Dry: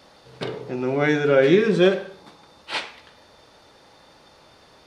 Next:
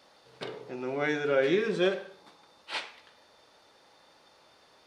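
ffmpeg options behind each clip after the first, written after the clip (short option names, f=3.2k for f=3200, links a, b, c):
-af "lowshelf=f=210:g=-11.5,volume=-7dB"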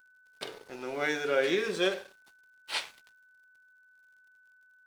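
-af "aemphasis=mode=production:type=bsi,aeval=exprs='sgn(val(0))*max(abs(val(0))-0.00316,0)':c=same,aeval=exprs='val(0)+0.00112*sin(2*PI*1500*n/s)':c=same"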